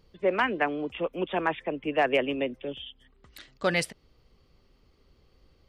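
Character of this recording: noise floor -64 dBFS; spectral tilt -3.0 dB/oct

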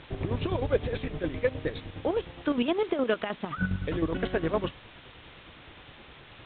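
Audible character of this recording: chopped level 9.7 Hz, depth 60%, duty 45%; a quantiser's noise floor 8-bit, dither triangular; A-law

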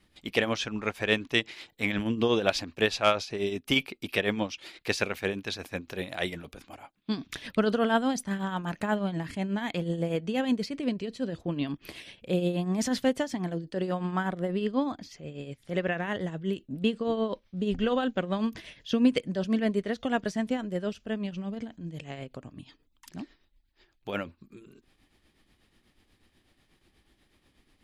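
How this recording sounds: tremolo triangle 8.2 Hz, depth 65%

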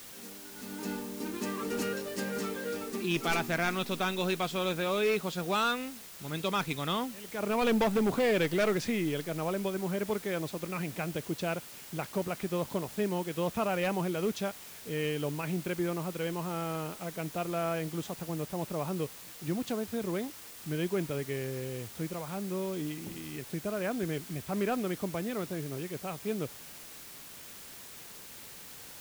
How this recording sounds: a quantiser's noise floor 8-bit, dither triangular

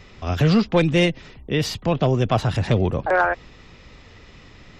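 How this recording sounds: noise floor -47 dBFS; spectral tilt -5.5 dB/oct

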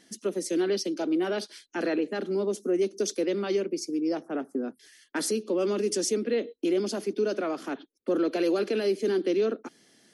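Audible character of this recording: noise floor -63 dBFS; spectral tilt -4.0 dB/oct

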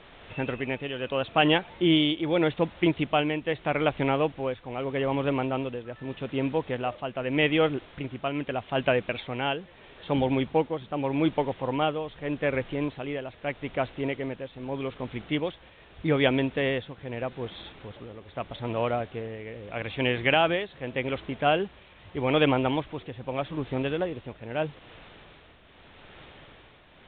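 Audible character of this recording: a quantiser's noise floor 8-bit, dither triangular; tremolo triangle 0.81 Hz, depth 65%; µ-law

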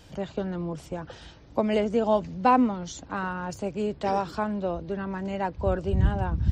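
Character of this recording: noise floor -49 dBFS; spectral tilt -5.0 dB/oct

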